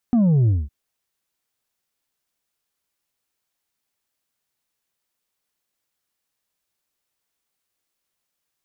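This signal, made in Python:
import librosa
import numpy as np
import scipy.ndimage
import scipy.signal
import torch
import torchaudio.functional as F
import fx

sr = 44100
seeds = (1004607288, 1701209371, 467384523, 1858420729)

y = fx.sub_drop(sr, level_db=-14.0, start_hz=250.0, length_s=0.56, drive_db=4.0, fade_s=0.21, end_hz=65.0)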